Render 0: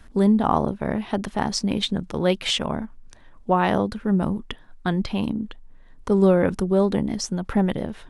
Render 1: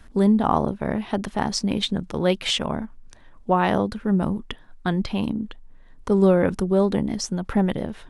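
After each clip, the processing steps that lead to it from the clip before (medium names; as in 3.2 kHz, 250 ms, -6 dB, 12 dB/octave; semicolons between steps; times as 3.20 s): no audible change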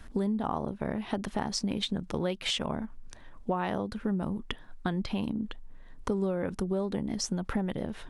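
compression 5:1, threshold -28 dBFS, peak gain reduction 14.5 dB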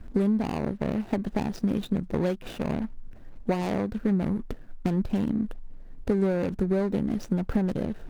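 median filter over 41 samples; trim +6 dB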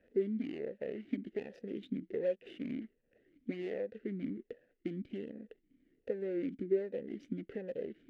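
talking filter e-i 1.3 Hz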